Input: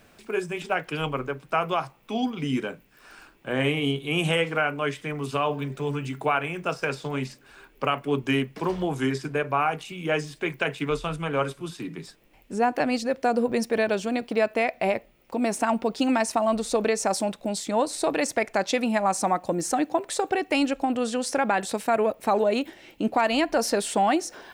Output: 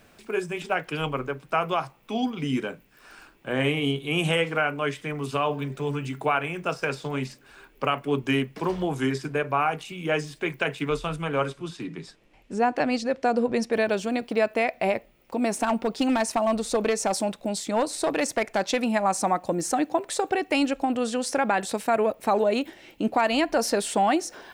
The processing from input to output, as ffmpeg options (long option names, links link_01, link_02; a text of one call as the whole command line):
ffmpeg -i in.wav -filter_complex "[0:a]asettb=1/sr,asplit=3[link_01][link_02][link_03];[link_01]atrim=end=11.484[link_04];[link_02]atrim=start=11.48:end=13.72,asetpts=PTS-STARTPTS,afade=type=in:duration=0.004:curve=qsin,afade=type=out:start_time=2.236:duration=0.004:curve=qsin,lowpass=7700[link_05];[link_03]atrim=start=13.716[link_06];[link_04][link_05]acrossfade=duration=0.004:curve1=hsin:curve2=qsin[link_07];[link_07][link_06]acrossfade=duration=0.004:curve1=qsin:curve2=hsin,asettb=1/sr,asplit=3[link_08][link_09][link_10];[link_08]atrim=end=15.554[link_11];[link_09]atrim=start=15.55:end=18.91,asetpts=PTS-STARTPTS,afade=type=in:duration=0.004:curve=qsin,afade=type=out:start_time=3.356:duration=0.004:curve=qsin,aeval=exprs='clip(val(0),-1,0.126)':channel_layout=same[link_12];[link_10]atrim=start=18.906[link_13];[link_11][link_12]acrossfade=duration=0.004:curve1=hsin:curve2=qsin[link_14];[link_14][link_13]acrossfade=duration=0.004:curve1=qsin:curve2=hsin" out.wav